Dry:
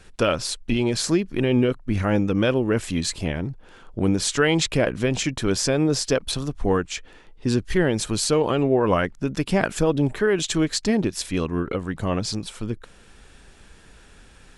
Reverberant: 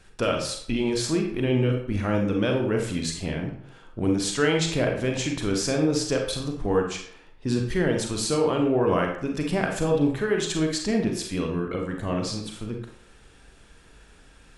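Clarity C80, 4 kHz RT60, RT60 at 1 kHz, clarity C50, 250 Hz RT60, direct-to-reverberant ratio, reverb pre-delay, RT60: 8.5 dB, 0.45 s, 0.65 s, 4.5 dB, 0.55 s, 1.5 dB, 33 ms, 0.65 s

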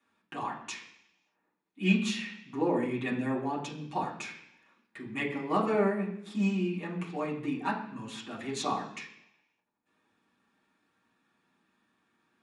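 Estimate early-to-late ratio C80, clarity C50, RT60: 10.0 dB, 7.5 dB, 0.70 s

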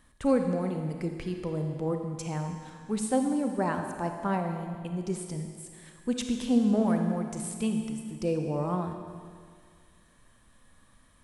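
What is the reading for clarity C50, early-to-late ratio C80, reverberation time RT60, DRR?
4.5 dB, 6.0 dB, 2.0 s, 4.0 dB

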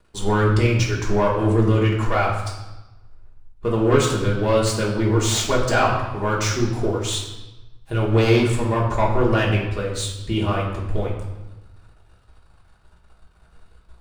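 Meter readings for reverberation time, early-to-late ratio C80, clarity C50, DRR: 1.0 s, 6.5 dB, 4.0 dB, -4.5 dB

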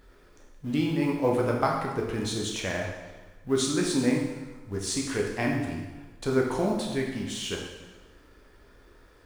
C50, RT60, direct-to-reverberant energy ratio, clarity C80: 3.0 dB, 1.2 s, -1.5 dB, 5.5 dB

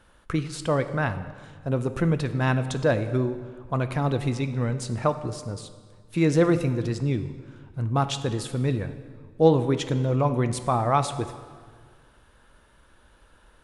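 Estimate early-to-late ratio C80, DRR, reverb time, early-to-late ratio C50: 13.0 dB, 9.5 dB, 1.7 s, 11.5 dB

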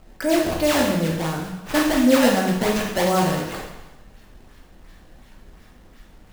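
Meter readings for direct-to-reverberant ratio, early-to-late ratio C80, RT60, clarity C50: -1.0 dB, 6.0 dB, 1.0 s, 3.0 dB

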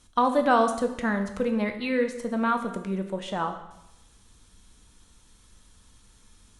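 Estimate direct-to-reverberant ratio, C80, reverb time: 5.5 dB, 11.0 dB, 0.90 s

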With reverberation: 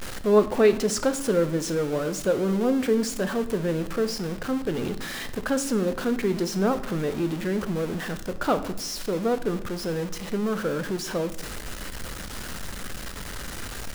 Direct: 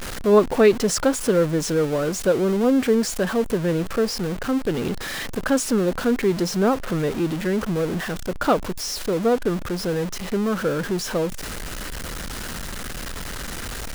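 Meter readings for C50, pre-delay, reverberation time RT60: 13.5 dB, 9 ms, 0.90 s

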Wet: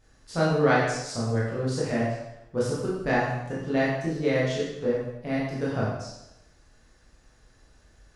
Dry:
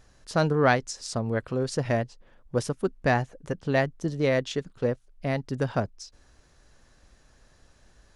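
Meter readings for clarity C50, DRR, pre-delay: 0.0 dB, -7.5 dB, 7 ms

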